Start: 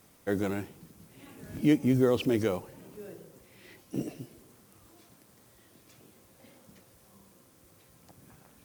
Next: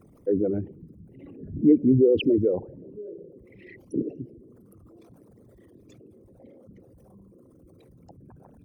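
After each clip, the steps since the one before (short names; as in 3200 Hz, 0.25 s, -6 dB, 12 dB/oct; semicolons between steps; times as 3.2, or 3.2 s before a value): formant sharpening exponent 3; gain +6 dB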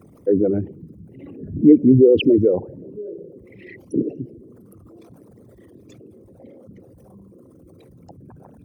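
HPF 62 Hz; gain +6.5 dB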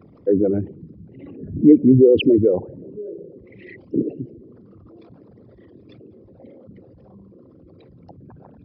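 downsampling 11025 Hz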